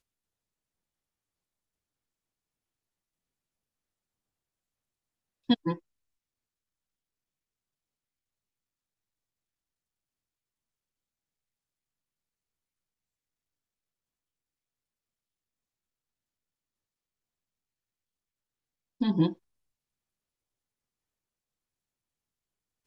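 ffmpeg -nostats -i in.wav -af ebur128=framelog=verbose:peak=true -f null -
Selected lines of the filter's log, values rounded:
Integrated loudness:
  I:         -29.4 LUFS
  Threshold: -40.1 LUFS
Loudness range:
  LRA:         2.9 LU
  Threshold: -56.8 LUFS
  LRA low:   -38.4 LUFS
  LRA high:  -35.6 LUFS
True peak:
  Peak:      -12.0 dBFS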